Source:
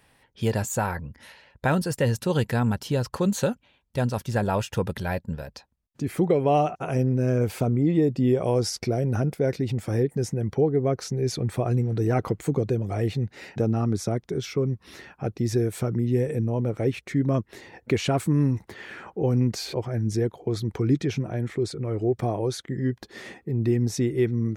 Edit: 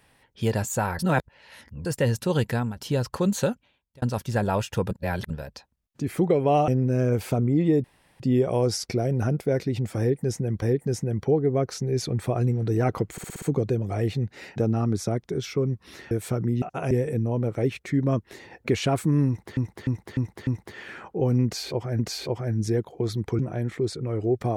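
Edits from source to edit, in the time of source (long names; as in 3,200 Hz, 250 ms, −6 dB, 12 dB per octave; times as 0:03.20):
0:00.99–0:01.85: reverse
0:02.51–0:02.76: fade out, to −13 dB
0:03.48–0:04.02: fade out
0:04.91–0:05.30: reverse
0:06.68–0:06.97: move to 0:16.13
0:08.13: splice in room tone 0.36 s
0:09.92–0:10.55: repeat, 2 plays
0:12.42: stutter 0.06 s, 6 plays
0:15.11–0:15.62: remove
0:18.49–0:18.79: repeat, 5 plays
0:19.46–0:20.01: repeat, 2 plays
0:20.86–0:21.17: remove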